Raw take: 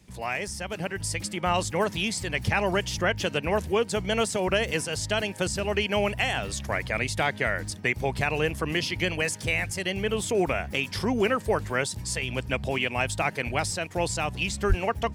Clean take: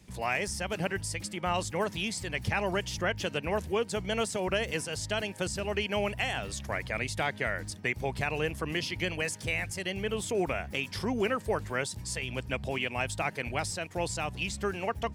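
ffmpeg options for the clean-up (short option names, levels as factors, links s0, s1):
-filter_complex "[0:a]asplit=3[s0][s1][s2];[s0]afade=t=out:st=14.68:d=0.02[s3];[s1]highpass=f=140:w=0.5412,highpass=f=140:w=1.3066,afade=t=in:st=14.68:d=0.02,afade=t=out:st=14.8:d=0.02[s4];[s2]afade=t=in:st=14.8:d=0.02[s5];[s3][s4][s5]amix=inputs=3:normalize=0,asetnsamples=n=441:p=0,asendcmd='1 volume volume -5dB',volume=1"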